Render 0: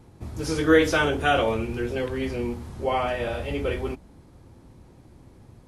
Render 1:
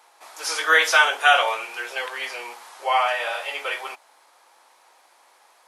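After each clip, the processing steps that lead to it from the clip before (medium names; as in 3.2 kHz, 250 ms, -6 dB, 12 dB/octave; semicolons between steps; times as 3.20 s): high-pass 770 Hz 24 dB/octave; trim +8.5 dB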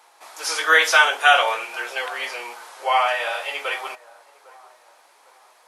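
feedback echo behind a band-pass 804 ms, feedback 34%, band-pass 720 Hz, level -20.5 dB; trim +1.5 dB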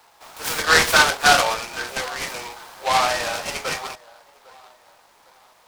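delay time shaken by noise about 2.6 kHz, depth 0.067 ms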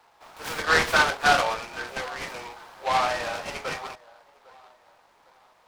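treble shelf 4.6 kHz -11.5 dB; trim -3.5 dB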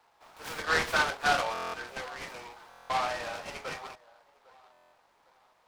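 buffer glitch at 1.53/2.69/4.72 s, samples 1024, times 8; trim -6.5 dB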